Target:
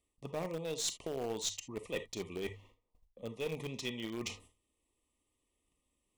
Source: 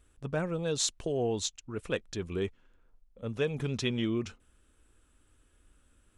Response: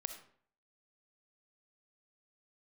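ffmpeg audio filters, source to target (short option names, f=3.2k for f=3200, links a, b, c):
-filter_complex "[0:a]asuperstop=centerf=1500:order=20:qfactor=2.6,lowshelf=f=150:g=-4.5,agate=range=-19dB:threshold=-60dB:ratio=16:detection=peak,lowshelf=f=65:g=-11.5,bandreject=f=50:t=h:w=6,bandreject=f=100:t=h:w=6,bandreject=f=150:t=h:w=6,areverse,acompressor=threshold=-45dB:ratio=5,areverse[a];[1:a]atrim=start_sample=2205,afade=t=out:st=0.17:d=0.01,atrim=end_sample=7938,asetrate=66150,aresample=44100[b];[a][b]afir=irnorm=-1:irlink=0,acrossover=split=490|3000[c][d][e];[c]acompressor=threshold=-55dB:ratio=3[f];[f][d][e]amix=inputs=3:normalize=0,asplit=2[g][h];[h]acrusher=bits=5:dc=4:mix=0:aa=0.000001,volume=-10dB[i];[g][i]amix=inputs=2:normalize=0,volume=13.5dB"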